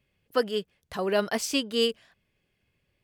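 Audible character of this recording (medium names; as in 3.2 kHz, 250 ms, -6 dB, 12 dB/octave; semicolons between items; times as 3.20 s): noise floor -76 dBFS; spectral tilt -3.0 dB/octave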